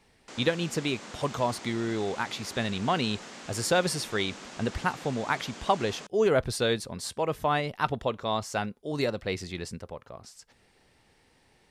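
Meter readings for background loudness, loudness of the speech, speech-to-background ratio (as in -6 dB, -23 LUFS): -43.5 LUFS, -29.5 LUFS, 14.0 dB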